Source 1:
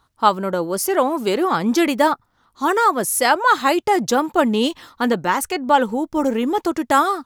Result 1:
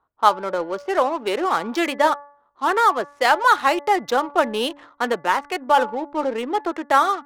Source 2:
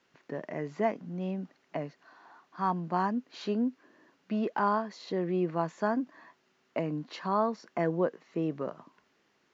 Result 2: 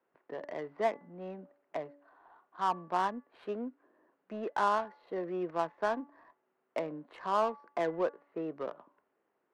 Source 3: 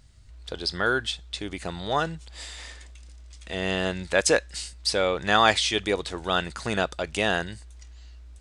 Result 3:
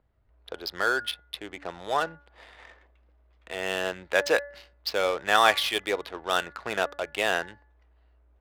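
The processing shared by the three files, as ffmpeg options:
-filter_complex "[0:a]acrossover=split=370 4900:gain=0.158 1 0.126[link_01][link_02][link_03];[link_01][link_02][link_03]amix=inputs=3:normalize=0,adynamicsmooth=sensitivity=6:basefreq=980,bandreject=frequency=286.9:width_type=h:width=4,bandreject=frequency=573.8:width_type=h:width=4,bandreject=frequency=860.7:width_type=h:width=4,bandreject=frequency=1147.6:width_type=h:width=4,bandreject=frequency=1434.5:width_type=h:width=4,bandreject=frequency=1721.4:width_type=h:width=4,bandreject=frequency=2008.3:width_type=h:width=4"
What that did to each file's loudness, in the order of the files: −2.0, −3.0, −1.5 LU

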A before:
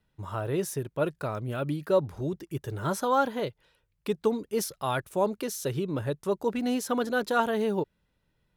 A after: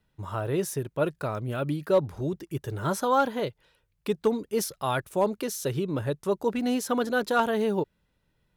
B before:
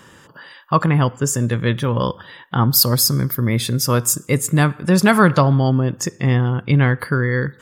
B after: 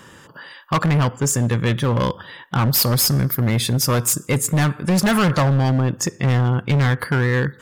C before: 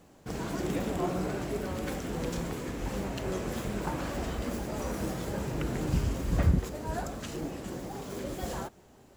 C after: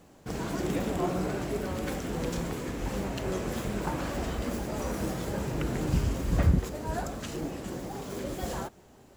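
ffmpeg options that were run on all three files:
-af "volume=15.5dB,asoftclip=hard,volume=-15.5dB,volume=1.5dB"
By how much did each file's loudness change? +1.5, −1.5, +1.5 LU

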